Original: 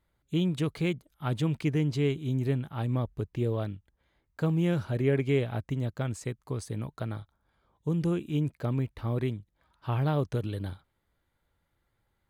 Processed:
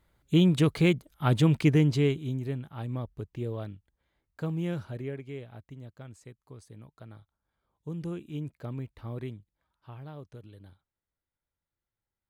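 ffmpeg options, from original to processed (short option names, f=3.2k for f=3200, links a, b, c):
-af "volume=12.5dB,afade=t=out:st=1.69:d=0.72:silence=0.281838,afade=t=out:st=4.74:d=0.47:silence=0.354813,afade=t=in:st=6.98:d=1.08:silence=0.473151,afade=t=out:st=9.38:d=0.57:silence=0.354813"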